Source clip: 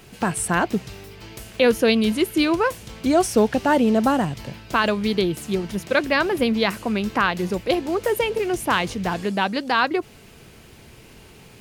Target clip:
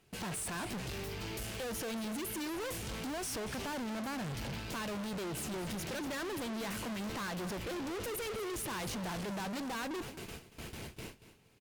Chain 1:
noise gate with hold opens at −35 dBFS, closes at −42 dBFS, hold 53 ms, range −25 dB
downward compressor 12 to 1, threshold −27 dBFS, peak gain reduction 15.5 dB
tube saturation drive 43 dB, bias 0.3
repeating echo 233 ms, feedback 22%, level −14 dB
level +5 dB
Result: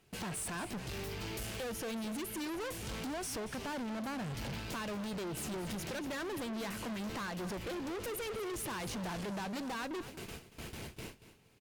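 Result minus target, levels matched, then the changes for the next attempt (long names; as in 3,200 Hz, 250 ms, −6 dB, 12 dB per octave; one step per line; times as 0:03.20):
downward compressor: peak gain reduction +9 dB
change: downward compressor 12 to 1, threshold −17 dBFS, peak gain reduction 6.5 dB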